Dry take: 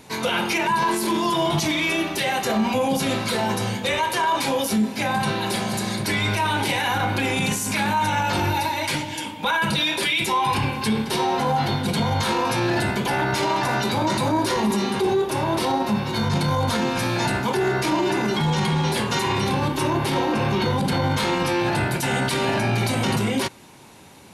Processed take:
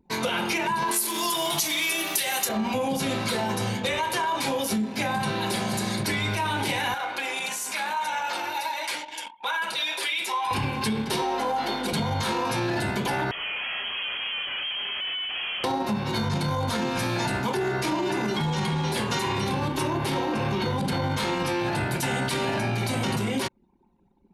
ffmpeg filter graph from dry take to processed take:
-filter_complex "[0:a]asettb=1/sr,asplit=3[s0][s1][s2];[s0]atrim=end=0.914[s3];[s1]atrim=start=0.91:end=2.49,asetpts=PTS-STARTPTS,afade=t=in:d=0.004:c=qsin,afade=t=out:st=1.576:d=0.004:c=qsin,aemphasis=mode=production:type=riaa,acrusher=bits=8:dc=4:mix=0:aa=0.000001[s4];[s2]atrim=start=2.486[s5];[s3][s4]acrossfade=d=0.004:c1=hsin:c2=qsin[s6];[s6][s5]acrossfade=d=0.004:c1=qsin:c2=hsin,asettb=1/sr,asplit=3[s7][s8][s9];[s7]atrim=end=6.944[s10];[s8]atrim=start=6.94:end=10.51,asetpts=PTS-STARTPTS,afade=t=in:d=0.004:c=qsin,afade=t=out:st=3.566:d=0.004:c=qsin,highpass=600,flanger=delay=1.2:depth=2.6:regen=-62:speed=1.7:shape=sinusoidal[s11];[s9]atrim=start=10.506[s12];[s10][s11]acrossfade=d=0.004:c1=hsin:c2=qsin[s13];[s13][s12]acrossfade=d=0.004:c1=qsin:c2=hsin,asettb=1/sr,asplit=3[s14][s15][s16];[s14]atrim=end=11.224[s17];[s15]atrim=start=11.22:end=11.93,asetpts=PTS-STARTPTS,afade=t=in:d=0.004:c=qsin,afade=t=out:st=0.706:d=0.004:c=qsin,highpass=f=250:w=0.5412,highpass=f=250:w=1.3066,bandreject=f=3900:w=24,aeval=exprs='val(0)+0.00355*(sin(2*PI*50*n/s)+sin(2*PI*2*50*n/s)/2+sin(2*PI*3*50*n/s)/3+sin(2*PI*4*50*n/s)/4+sin(2*PI*5*50*n/s)/5)':c=same[s18];[s16]atrim=start=11.926[s19];[s17][s18]acrossfade=d=0.004:c1=hsin:c2=qsin[s20];[s20][s19]acrossfade=d=0.004:c1=qsin:c2=hsin,asettb=1/sr,asplit=3[s21][s22][s23];[s21]atrim=end=13.314[s24];[s22]atrim=start=13.31:end=15.64,asetpts=PTS-STARTPTS,afade=t=in:d=0.004:c=qsin,afade=t=out:st=2.326:d=0.004:c=qsin,asoftclip=type=hard:threshold=0.0335,lowpass=f=2900:t=q:w=0.5098,lowpass=f=2900:t=q:w=0.6013,lowpass=f=2900:t=q:w=0.9,lowpass=f=2900:t=q:w=2.563,afreqshift=-3400[s25];[s23]atrim=start=15.636[s26];[s24][s25]acrossfade=d=0.004:c1=hsin:c2=qsin[s27];[s27][s26]acrossfade=d=0.004:c1=qsin:c2=hsin,anlmdn=1.58,acompressor=threshold=0.0708:ratio=6"

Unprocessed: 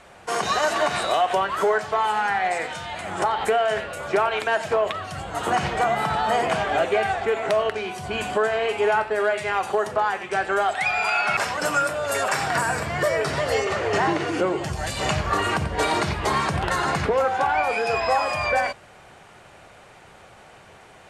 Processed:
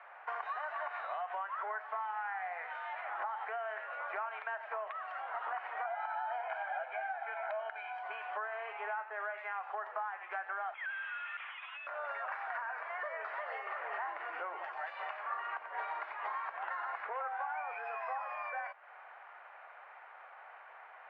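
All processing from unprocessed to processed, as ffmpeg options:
-filter_complex "[0:a]asettb=1/sr,asplit=3[s0][s1][s2];[s0]atrim=end=5.854[s3];[s1]atrim=start=5.85:end=8.03,asetpts=PTS-STARTPTS,afade=t=in:d=0.004:c=qsin,afade=t=out:st=2.176:d=0.004:c=qsin,highpass=250,aecho=1:1:1.3:0.79,atrim=end_sample=96138[s4];[s2]atrim=start=8.026[s5];[s3][s4]acrossfade=d=0.004:c1=hsin:c2=qsin[s6];[s6][s5]acrossfade=d=0.004:c1=qsin:c2=hsin,asettb=1/sr,asplit=3[s7][s8][s9];[s7]atrim=end=10.744[s10];[s8]atrim=start=10.74:end=11.87,asetpts=PTS-STARTPTS,afade=t=in:d=0.004:c=qsin,afade=t=out:st=1.126:d=0.004:c=qsin,highpass=f=1000:p=1,asoftclip=type=hard:threshold=0.0531,lowpass=f=3400:t=q:w=0.5098,lowpass=f=3400:t=q:w=0.6013,lowpass=f=3400:t=q:w=0.9,lowpass=f=3400:t=q:w=2.563,afreqshift=-4000[s11];[s9]atrim=start=11.866[s12];[s10][s11]acrossfade=d=0.004:c1=hsin:c2=qsin[s13];[s13][s12]acrossfade=d=0.004:c1=qsin:c2=hsin,highpass=f=760:w=0.5412,highpass=f=760:w=1.3066,acompressor=threshold=0.0178:ratio=6,lowpass=f=2000:w=0.5412,lowpass=f=2000:w=1.3066,volume=0.841"

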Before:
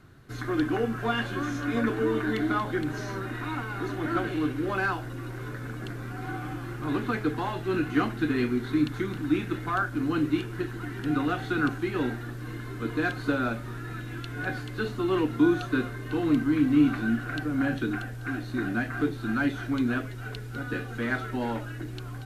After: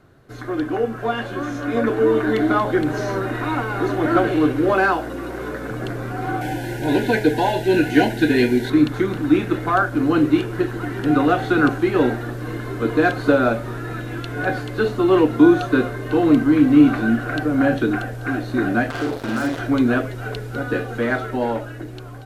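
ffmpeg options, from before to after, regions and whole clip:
-filter_complex "[0:a]asettb=1/sr,asplit=3[s0][s1][s2];[s0]atrim=end=4.734[s3];[s1]atrim=start=4.73:end=5.71,asetpts=PTS-STARTPTS,afade=t=in:d=0.004:c=qsin,afade=t=out:st=0.976:d=0.004:c=qsin,highpass=f=150:w=0.5412,highpass=f=150:w=1.3066,aeval=exprs='val(0)+0.00631*(sin(2*PI*60*n/s)+sin(2*PI*2*60*n/s)/2+sin(2*PI*3*60*n/s)/3+sin(2*PI*4*60*n/s)/4+sin(2*PI*5*60*n/s)/5)':c=same[s4];[s2]atrim=start=5.706[s5];[s3][s4]acrossfade=d=0.004:c1=hsin:c2=qsin[s6];[s6][s5]acrossfade=d=0.004:c1=qsin:c2=hsin,asettb=1/sr,asplit=3[s7][s8][s9];[s7]atrim=end=6.414[s10];[s8]atrim=start=6.41:end=8.7,asetpts=PTS-STARTPTS,afade=t=in:d=0.004:c=qsin,afade=t=out:st=2.286:d=0.004:c=qsin,asuperstop=centerf=1200:order=20:qfactor=2.8,highshelf=f=2100:g=8.5[s11];[s9]atrim=start=8.696[s12];[s10][s11]acrossfade=d=0.004:c1=hsin:c2=qsin[s13];[s13][s12]acrossfade=d=0.004:c1=qsin:c2=hsin,asettb=1/sr,asplit=3[s14][s15][s16];[s14]atrim=end=18.904[s17];[s15]atrim=start=18.9:end=19.59,asetpts=PTS-STARTPTS,afade=t=in:d=0.004:c=qsin,afade=t=out:st=0.686:d=0.004:c=qsin,acrusher=bits=4:mix=0:aa=0.5,acompressor=threshold=0.02:ratio=2.5:attack=3.2:release=140:knee=1:detection=peak,asplit=2[s18][s19];[s19]adelay=49,volume=0.708[s20];[s18][s20]amix=inputs=2:normalize=0,atrim=end_sample=30429[s21];[s16]atrim=start=19.586[s22];[s17][s21]acrossfade=d=0.004:c1=hsin:c2=qsin[s23];[s23][s22]acrossfade=d=0.004:c1=qsin:c2=hsin,dynaudnorm=f=600:g=7:m=2.51,equalizer=f=570:w=1.1:g=10,volume=0.891"

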